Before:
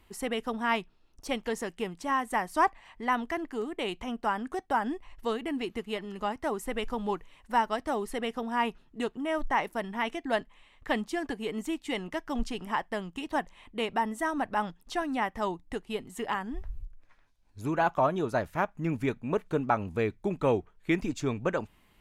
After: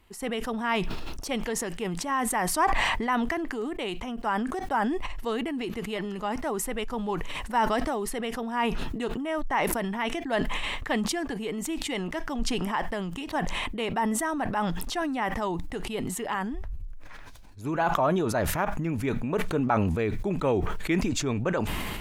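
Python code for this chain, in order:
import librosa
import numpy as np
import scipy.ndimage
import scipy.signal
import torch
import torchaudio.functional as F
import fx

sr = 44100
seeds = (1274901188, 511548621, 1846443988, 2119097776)

y = fx.sustainer(x, sr, db_per_s=21.0)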